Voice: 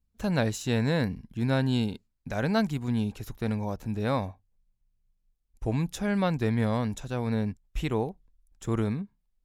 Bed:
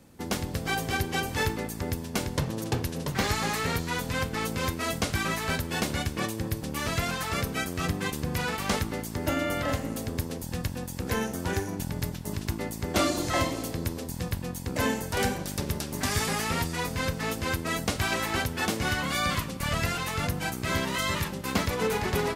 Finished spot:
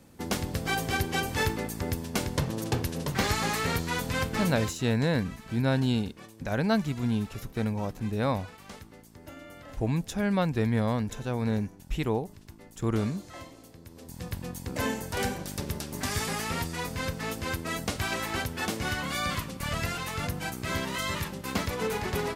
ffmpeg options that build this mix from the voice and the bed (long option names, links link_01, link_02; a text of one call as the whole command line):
ffmpeg -i stem1.wav -i stem2.wav -filter_complex "[0:a]adelay=4150,volume=0dB[link_01];[1:a]volume=15dB,afade=type=out:start_time=4.36:duration=0.46:silence=0.125893,afade=type=in:start_time=13.88:duration=0.54:silence=0.177828[link_02];[link_01][link_02]amix=inputs=2:normalize=0" out.wav